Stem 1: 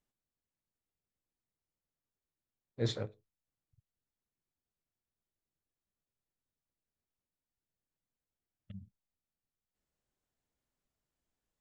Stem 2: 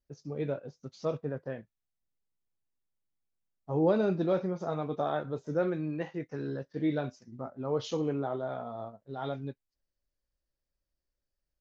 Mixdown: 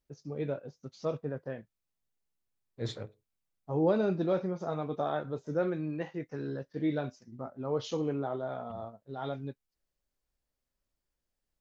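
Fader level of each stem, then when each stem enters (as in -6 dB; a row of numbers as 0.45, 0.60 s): -3.0, -1.0 dB; 0.00, 0.00 s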